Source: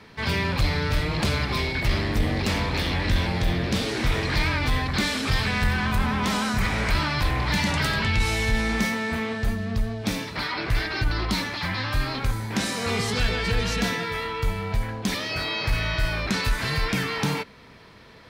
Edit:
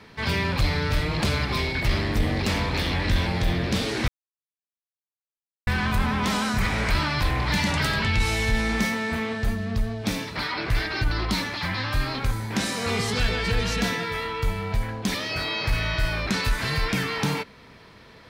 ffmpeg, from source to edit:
-filter_complex "[0:a]asplit=3[a][b][c];[a]atrim=end=4.08,asetpts=PTS-STARTPTS,afade=t=out:st=4.076:d=0.004:c=hsin[d];[b]atrim=start=4.08:end=5.67,asetpts=PTS-STARTPTS,volume=0[e];[c]atrim=start=5.67,asetpts=PTS-STARTPTS,afade=t=in:d=0.004:c=hsin[f];[d][e][f]concat=n=3:v=0:a=1"

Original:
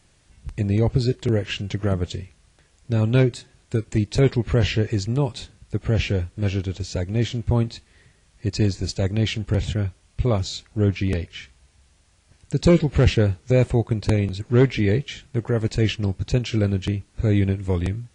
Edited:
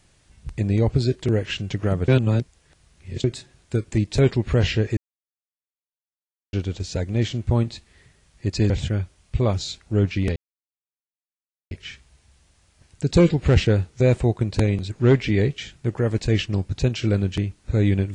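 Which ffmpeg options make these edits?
-filter_complex "[0:a]asplit=7[a][b][c][d][e][f][g];[a]atrim=end=2.082[h];[b]atrim=start=2.078:end=3.242,asetpts=PTS-STARTPTS,areverse[i];[c]atrim=start=3.238:end=4.97,asetpts=PTS-STARTPTS,afade=t=out:st=1.728:d=0.004:c=hsin[j];[d]atrim=start=4.97:end=6.53,asetpts=PTS-STARTPTS,volume=0[k];[e]atrim=start=6.53:end=8.702,asetpts=PTS-STARTPTS,afade=t=in:d=0.004:c=hsin[l];[f]atrim=start=9.548:end=11.21,asetpts=PTS-STARTPTS,afade=t=out:st=1.658:d=0.004:c=hsin,apad=pad_dur=1.35[m];[g]atrim=start=11.21,asetpts=PTS-STARTPTS,afade=t=in:d=0.004:c=hsin[n];[h][i]acrossfade=d=0.004:c1=hsin:c2=hsin[o];[j][k][l]concat=n=3:v=0:a=1[p];[o][p]acrossfade=d=0.004:c1=hsin:c2=hsin[q];[m][n]concat=n=2:v=0:a=1[r];[q][r]acrossfade=d=0.004:c1=hsin:c2=hsin"

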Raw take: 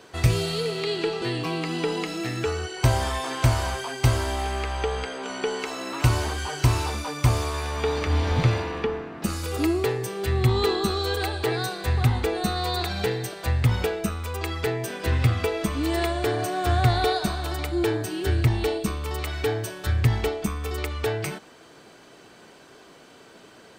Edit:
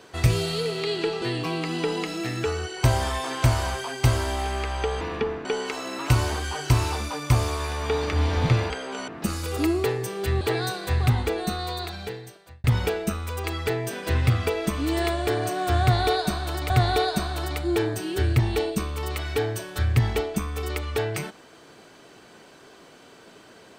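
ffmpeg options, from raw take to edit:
-filter_complex "[0:a]asplit=8[a][b][c][d][e][f][g][h];[a]atrim=end=5.012[i];[b]atrim=start=8.638:end=9.082[j];[c]atrim=start=5.388:end=8.642[k];[d]atrim=start=5.008:end=5.392[l];[e]atrim=start=9.078:end=10.412[m];[f]atrim=start=11.378:end=13.61,asetpts=PTS-STARTPTS,afade=t=out:st=0.742:d=1.49[n];[g]atrim=start=13.61:end=17.672,asetpts=PTS-STARTPTS,afade=t=in:d=0.004:c=hsin[o];[h]atrim=start=16.778[p];[i][j]acrossfade=d=0.004:c1=hsin:c2=hsin[q];[q][k]acrossfade=d=0.004:c1=hsin:c2=hsin[r];[r][l]acrossfade=d=0.004:c1=hsin:c2=hsin[s];[s][m]acrossfade=d=0.004:c1=hsin:c2=hsin[t];[n][o]concat=n=2:v=0:a=1[u];[t][u]acrossfade=d=0.004:c1=hsin:c2=hsin[v];[v][p]acrossfade=d=0.004:c1=hsin:c2=hsin"

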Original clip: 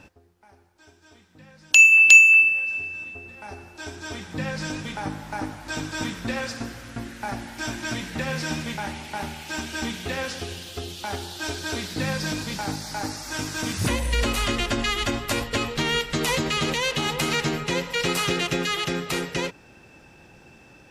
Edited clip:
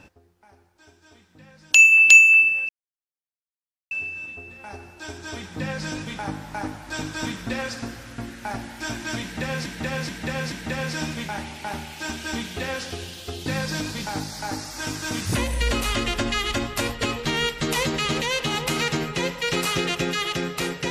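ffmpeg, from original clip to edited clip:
-filter_complex "[0:a]asplit=6[a][b][c][d][e][f];[a]atrim=end=2.69,asetpts=PTS-STARTPTS,afade=t=out:st=2.686:d=0.004:c=hsin,apad=pad_dur=1.22[g];[b]atrim=start=2.69:end=8.442,asetpts=PTS-STARTPTS,afade=t=in:d=0.004:c=hsin[h];[c]atrim=start=8.008:end=8.442[i];[d]atrim=start=8.008:end=8.442[j];[e]atrim=start=8.008:end=10.952[k];[f]atrim=start=11.978[l];[g][h]concat=n=2:v=0:a=1[m];[m][i]acrossfade=d=0.004:c1=hsin:c2=hsin[n];[n][j]acrossfade=d=0.004:c1=hsin:c2=hsin[o];[o][k]acrossfade=d=0.004:c1=hsin:c2=hsin[p];[p][l]acrossfade=d=0.004:c1=hsin:c2=hsin"

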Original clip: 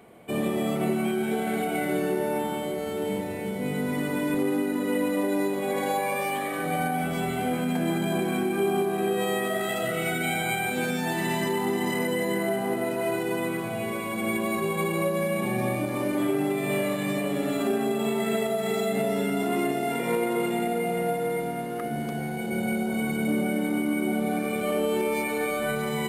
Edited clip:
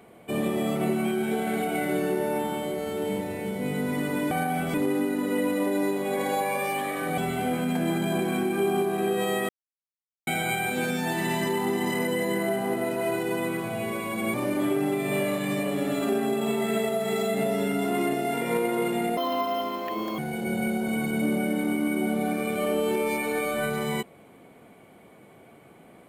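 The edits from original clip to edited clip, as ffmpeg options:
-filter_complex "[0:a]asplit=9[a][b][c][d][e][f][g][h][i];[a]atrim=end=4.312[j];[b]atrim=start=6.748:end=7.182[k];[c]atrim=start=4.308:end=6.752[l];[d]atrim=start=7.178:end=9.49,asetpts=PTS-STARTPTS,afade=t=out:st=2.308:d=0.004:c=hsin[m];[e]atrim=start=9.49:end=10.27,asetpts=PTS-STARTPTS,volume=0[n];[f]atrim=start=10.27:end=14.342,asetpts=PTS-STARTPTS,afade=t=in:d=0.004:c=hsin[o];[g]atrim=start=15.918:end=20.754[p];[h]atrim=start=20.75:end=22.24,asetpts=PTS-STARTPTS,asetrate=64827,aresample=44100[q];[i]atrim=start=22.236[r];[j][k]acrossfade=d=0.004:c1=hsin:c2=hsin[s];[s][l]acrossfade=d=0.004:c1=hsin:c2=hsin[t];[m][n][o]concat=n=3:v=0:a=1[u];[t][u]acrossfade=d=0.004:c1=hsin:c2=hsin[v];[v][p]acrossfade=d=0.004:c1=hsin:c2=hsin[w];[w][q]acrossfade=d=0.004:c1=hsin:c2=hsin[x];[x][r]acrossfade=d=0.004:c1=hsin:c2=hsin"

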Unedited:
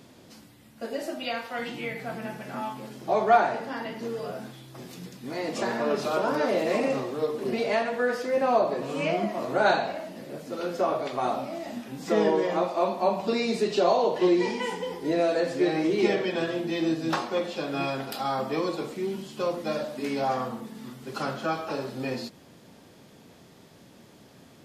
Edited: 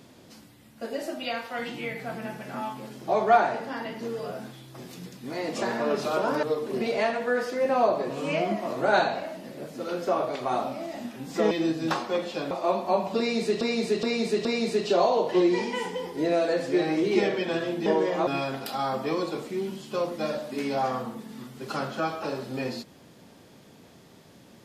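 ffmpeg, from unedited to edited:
-filter_complex "[0:a]asplit=9[a][b][c][d][e][f][g][h][i];[a]atrim=end=6.432[j];[b]atrim=start=7.148:end=12.232[k];[c]atrim=start=16.728:end=17.732[l];[d]atrim=start=12.638:end=13.742[m];[e]atrim=start=13.318:end=13.742[n];[f]atrim=start=13.318:end=13.742[o];[g]atrim=start=13.318:end=16.732[p];[h]atrim=start=12.228:end=12.642[q];[i]atrim=start=17.728[r];[j][k]acrossfade=d=0.004:c1=hsin:c2=hsin[s];[s][l]acrossfade=d=0.004:c1=hsin:c2=hsin[t];[t][m]acrossfade=d=0.004:c1=hsin:c2=hsin[u];[u][n]acrossfade=d=0.004:c1=hsin:c2=hsin[v];[v][o]acrossfade=d=0.004:c1=hsin:c2=hsin[w];[w][p]acrossfade=d=0.004:c1=hsin:c2=hsin[x];[x][q]acrossfade=d=0.004:c1=hsin:c2=hsin[y];[y][r]acrossfade=d=0.004:c1=hsin:c2=hsin"

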